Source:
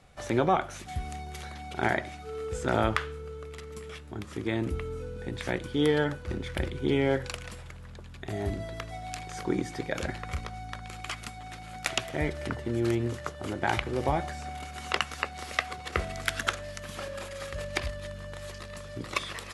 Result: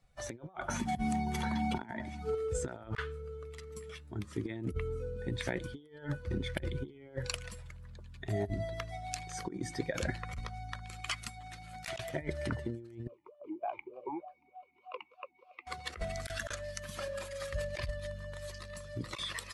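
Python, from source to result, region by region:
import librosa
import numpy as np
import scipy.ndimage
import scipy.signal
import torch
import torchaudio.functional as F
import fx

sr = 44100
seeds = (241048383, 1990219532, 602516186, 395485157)

y = fx.chain(x, sr, fx.notch(hz=3600.0, q=12.0),
    fx.small_body(hz=(230.0, 910.0, 3400.0), ring_ms=45, db=12),
    fx.band_squash(depth_pct=70), at=(0.68, 2.35))
y = fx.chain(y, sr, fx.air_absorb(metres=71.0),
    fx.vowel_sweep(vowels='a-u', hz=3.3), at=(13.07, 15.67))
y = fx.bin_expand(y, sr, power=1.5)
y = fx.over_compress(y, sr, threshold_db=-37.0, ratio=-0.5)
y = F.gain(torch.from_numpy(y), 1.5).numpy()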